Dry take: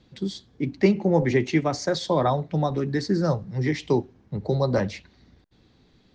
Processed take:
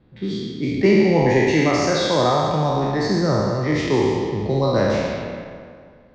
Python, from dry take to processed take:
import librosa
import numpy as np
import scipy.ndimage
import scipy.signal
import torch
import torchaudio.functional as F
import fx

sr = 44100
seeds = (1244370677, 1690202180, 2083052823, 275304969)

y = fx.spec_trails(x, sr, decay_s=2.13)
y = fx.rev_schroeder(y, sr, rt60_s=1.4, comb_ms=26, drr_db=7.5)
y = fx.env_lowpass(y, sr, base_hz=1800.0, full_db=-13.5)